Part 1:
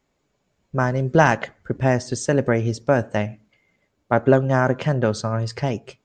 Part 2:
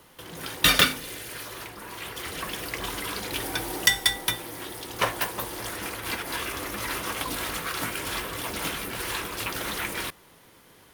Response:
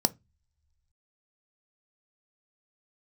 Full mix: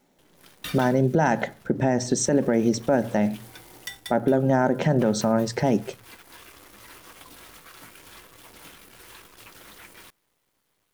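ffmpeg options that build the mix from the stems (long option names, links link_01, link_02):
-filter_complex "[0:a]acompressor=threshold=-19dB:ratio=3,volume=-0.5dB,asplit=2[link_01][link_02];[link_02]volume=-8.5dB[link_03];[1:a]acrusher=bits=6:dc=4:mix=0:aa=0.000001,volume=-16.5dB[link_04];[2:a]atrim=start_sample=2205[link_05];[link_03][link_05]afir=irnorm=-1:irlink=0[link_06];[link_01][link_04][link_06]amix=inputs=3:normalize=0,alimiter=limit=-10.5dB:level=0:latency=1:release=54"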